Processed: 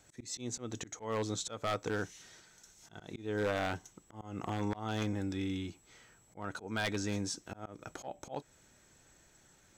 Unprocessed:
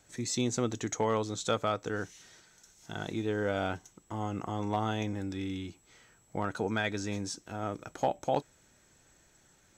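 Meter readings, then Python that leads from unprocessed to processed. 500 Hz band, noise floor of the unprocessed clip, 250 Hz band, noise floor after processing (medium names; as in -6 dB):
-5.5 dB, -65 dBFS, -4.0 dB, -65 dBFS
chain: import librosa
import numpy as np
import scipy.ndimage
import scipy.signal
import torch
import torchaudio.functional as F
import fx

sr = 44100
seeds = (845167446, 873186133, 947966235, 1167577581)

y = fx.auto_swell(x, sr, attack_ms=252.0)
y = 10.0 ** (-25.0 / 20.0) * (np.abs((y / 10.0 ** (-25.0 / 20.0) + 3.0) % 4.0 - 2.0) - 1.0)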